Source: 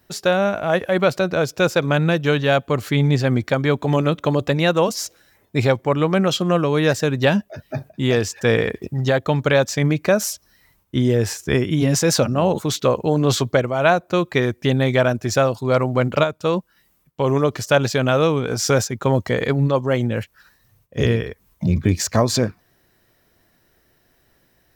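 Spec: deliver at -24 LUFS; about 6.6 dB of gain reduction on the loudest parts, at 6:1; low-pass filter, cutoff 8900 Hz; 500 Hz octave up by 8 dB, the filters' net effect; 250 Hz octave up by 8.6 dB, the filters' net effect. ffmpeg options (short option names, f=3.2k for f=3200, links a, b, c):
-af "lowpass=8.9k,equalizer=f=250:t=o:g=9,equalizer=f=500:t=o:g=7,acompressor=threshold=-12dB:ratio=6,volume=-6dB"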